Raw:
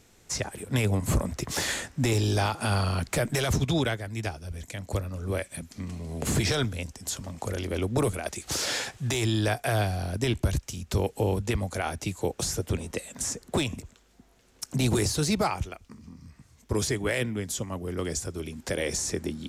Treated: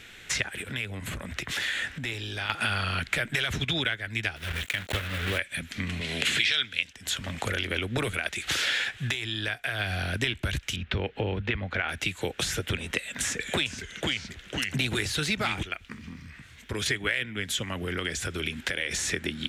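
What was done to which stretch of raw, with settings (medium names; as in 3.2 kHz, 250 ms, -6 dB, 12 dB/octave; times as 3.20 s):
0.61–2.50 s: compression 16:1, threshold -37 dBFS
4.36–5.40 s: block-companded coder 3-bit
6.01–6.93 s: frequency weighting D
9.02–9.93 s: dip -11.5 dB, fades 0.15 s
10.76–11.89 s: distance through air 300 m
12.97–15.63 s: ever faster or slower copies 422 ms, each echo -2 st, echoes 2, each echo -6 dB
16.21–16.86 s: compression 1.5:1, threshold -48 dBFS
17.66–18.91 s: compression, threshold -31 dBFS
whole clip: high-order bell 2.3 kHz +15 dB; compression 4:1, threshold -31 dBFS; trim +4 dB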